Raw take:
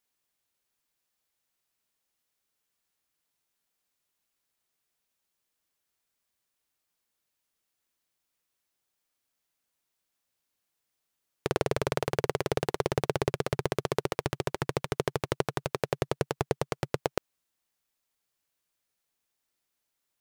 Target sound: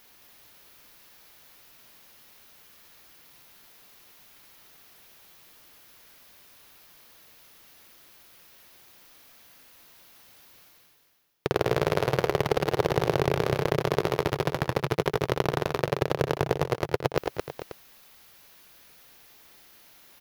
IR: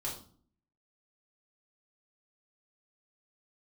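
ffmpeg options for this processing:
-af "areverse,acompressor=mode=upward:threshold=-37dB:ratio=2.5,areverse,equalizer=f=8.1k:w=1.8:g=-10.5,aecho=1:1:60|84|98|219|442|536:0.158|0.237|0.188|0.596|0.224|0.188,volume=3dB"

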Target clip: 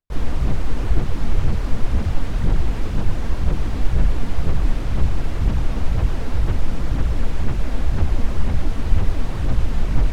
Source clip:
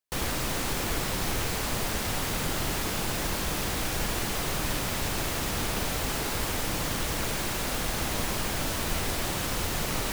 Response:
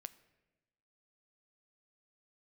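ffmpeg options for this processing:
-filter_complex "[0:a]aphaser=in_gain=1:out_gain=1:delay=4.5:decay=0.44:speed=2:type=sinusoidal,asplit=2[a][b];[b]asetrate=52444,aresample=44100,atempo=0.840896,volume=-4dB[c];[a][c]amix=inputs=2:normalize=0,aemphasis=mode=reproduction:type=riaa,volume=-5dB"

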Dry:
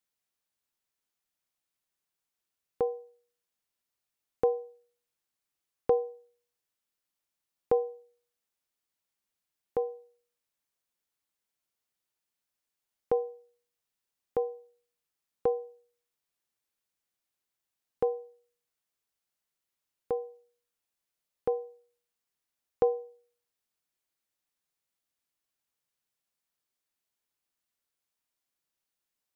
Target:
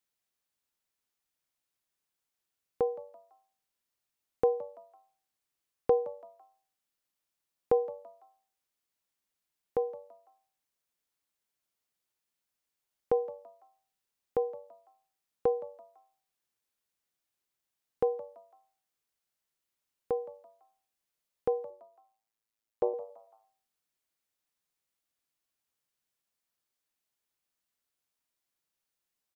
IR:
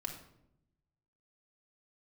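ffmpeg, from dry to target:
-filter_complex "[0:a]asettb=1/sr,asplit=3[a][b][c];[a]atrim=end=21.704[d];[b]atrim=start=21.7:end=22.94,asetpts=PTS-STARTPTS,afade=t=in:d=0.004:c=qsin,afade=t=out:st=1.236:d=0.004:c=qsin,tremolo=f=110:d=0.919[e];[c]atrim=start=22.936[f];[d][e]acrossfade=d=0.004:c1=hsin:c2=qsin[g];[g][f]acrossfade=d=0.004:c1=qsin:c2=hsin,asplit=4[h][i][j][k];[i]adelay=167,afreqshift=98,volume=-19dB[l];[j]adelay=334,afreqshift=196,volume=-27.9dB[m];[k]adelay=501,afreqshift=294,volume=-36.7dB[n];[h][l][m][n]amix=inputs=4:normalize=0"

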